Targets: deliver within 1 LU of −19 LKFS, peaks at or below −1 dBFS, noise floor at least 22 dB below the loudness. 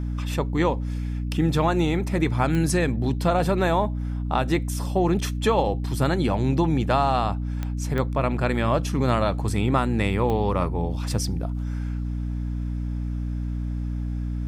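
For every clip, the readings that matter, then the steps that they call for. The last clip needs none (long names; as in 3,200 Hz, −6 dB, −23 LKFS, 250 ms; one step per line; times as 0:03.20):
number of clicks 4; mains hum 60 Hz; hum harmonics up to 300 Hz; level of the hum −25 dBFS; integrated loudness −24.5 LKFS; sample peak −8.5 dBFS; target loudness −19.0 LKFS
→ click removal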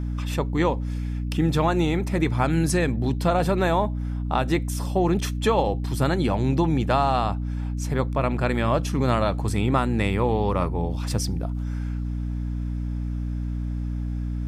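number of clicks 0; mains hum 60 Hz; hum harmonics up to 300 Hz; level of the hum −25 dBFS
→ mains-hum notches 60/120/180/240/300 Hz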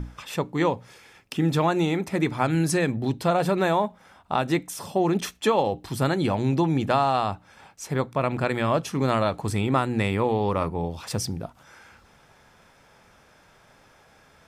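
mains hum none found; integrated loudness −25.0 LKFS; sample peak −8.0 dBFS; target loudness −19.0 LKFS
→ level +6 dB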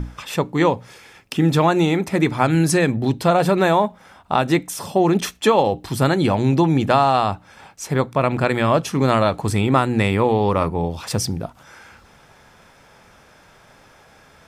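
integrated loudness −19.0 LKFS; sample peak −2.0 dBFS; background noise floor −51 dBFS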